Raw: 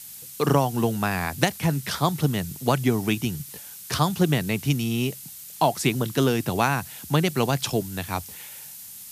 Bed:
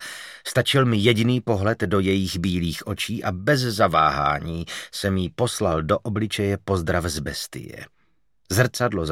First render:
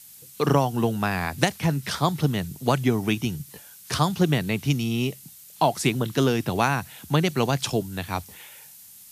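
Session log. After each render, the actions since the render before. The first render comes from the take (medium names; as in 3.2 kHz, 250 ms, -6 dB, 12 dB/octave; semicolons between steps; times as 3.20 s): noise print and reduce 6 dB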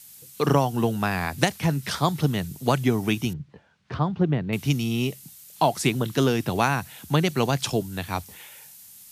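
3.33–4.53 s: tape spacing loss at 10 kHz 44 dB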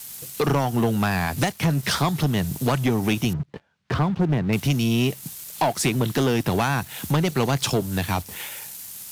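compression 2:1, threshold -33 dBFS, peak gain reduction 10.5 dB; waveshaping leveller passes 3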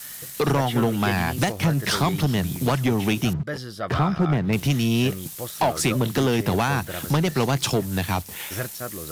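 add bed -12 dB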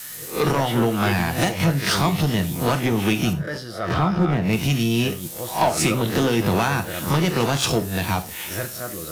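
reverse spectral sustain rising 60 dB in 0.33 s; gated-style reverb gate 130 ms falling, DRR 6.5 dB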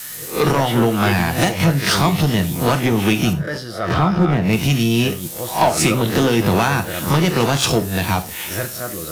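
trim +4 dB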